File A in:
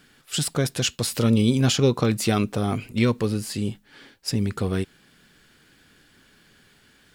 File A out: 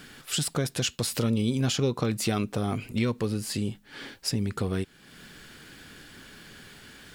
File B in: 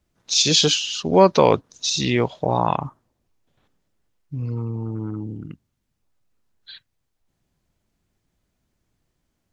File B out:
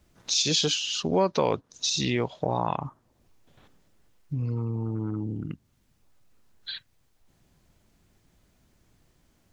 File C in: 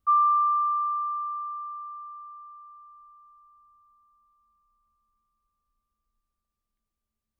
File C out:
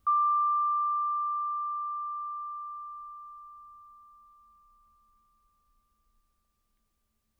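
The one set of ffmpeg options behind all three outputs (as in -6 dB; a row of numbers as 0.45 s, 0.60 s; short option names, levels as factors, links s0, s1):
-af "acompressor=threshold=0.00631:ratio=2,volume=2.66"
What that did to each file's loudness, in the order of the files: -5.0 LU, -8.0 LU, -4.0 LU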